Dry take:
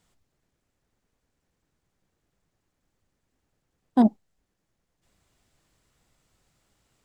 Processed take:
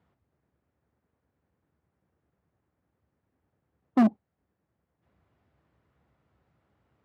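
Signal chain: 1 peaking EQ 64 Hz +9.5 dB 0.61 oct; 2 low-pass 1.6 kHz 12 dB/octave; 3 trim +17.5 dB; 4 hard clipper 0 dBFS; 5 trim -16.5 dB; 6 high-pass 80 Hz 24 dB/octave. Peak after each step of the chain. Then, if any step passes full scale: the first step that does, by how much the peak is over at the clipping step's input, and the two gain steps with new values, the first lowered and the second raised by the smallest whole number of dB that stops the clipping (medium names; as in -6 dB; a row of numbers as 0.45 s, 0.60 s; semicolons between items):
-9.0 dBFS, -9.0 dBFS, +8.5 dBFS, 0.0 dBFS, -16.5 dBFS, -11.0 dBFS; step 3, 8.5 dB; step 3 +8.5 dB, step 5 -7.5 dB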